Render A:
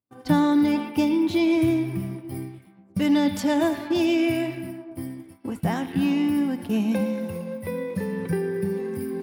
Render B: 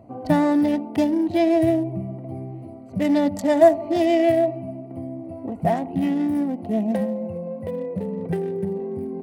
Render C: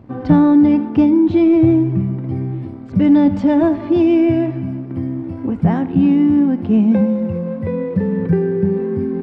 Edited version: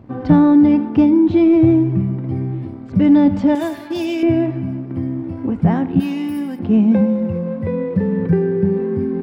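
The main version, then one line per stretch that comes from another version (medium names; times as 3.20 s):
C
3.55–4.23 s: from A
6.00–6.59 s: from A
not used: B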